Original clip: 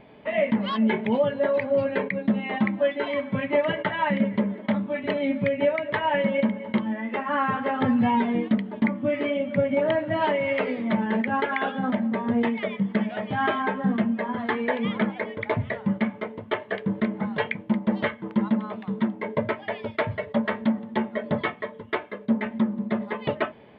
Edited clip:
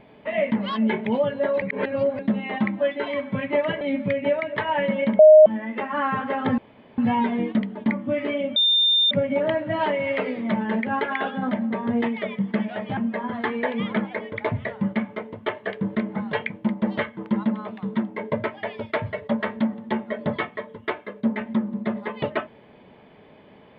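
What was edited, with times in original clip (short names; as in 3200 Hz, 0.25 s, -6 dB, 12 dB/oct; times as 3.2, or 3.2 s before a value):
1.62–2.19 reverse
3.81–5.17 cut
6.55–6.82 bleep 619 Hz -6 dBFS
7.94 insert room tone 0.40 s
9.52 add tone 3610 Hz -15.5 dBFS 0.55 s
13.38–14.02 cut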